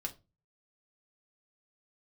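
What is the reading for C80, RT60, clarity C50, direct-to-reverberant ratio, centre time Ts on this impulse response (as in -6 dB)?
24.5 dB, 0.25 s, 17.5 dB, 1.0 dB, 7 ms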